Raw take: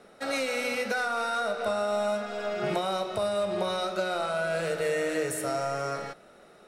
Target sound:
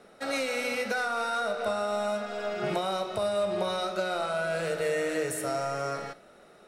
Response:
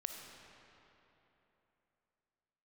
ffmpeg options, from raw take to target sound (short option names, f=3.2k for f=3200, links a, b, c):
-filter_complex "[0:a]asplit=2[a][b];[1:a]atrim=start_sample=2205,atrim=end_sample=3528[c];[b][c]afir=irnorm=-1:irlink=0,volume=-1dB[d];[a][d]amix=inputs=2:normalize=0,volume=-5dB"